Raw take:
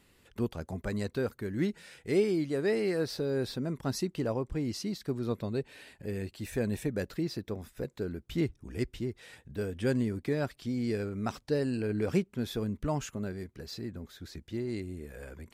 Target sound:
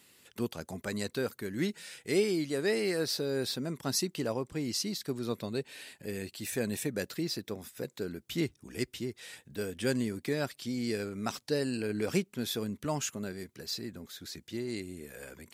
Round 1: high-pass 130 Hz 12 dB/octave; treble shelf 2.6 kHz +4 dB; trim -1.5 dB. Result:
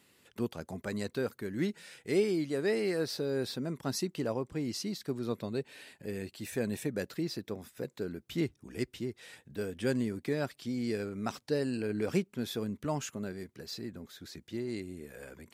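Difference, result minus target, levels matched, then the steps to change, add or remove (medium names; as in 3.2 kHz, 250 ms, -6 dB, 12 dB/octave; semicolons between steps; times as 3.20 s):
4 kHz band -4.5 dB
change: treble shelf 2.6 kHz +11.5 dB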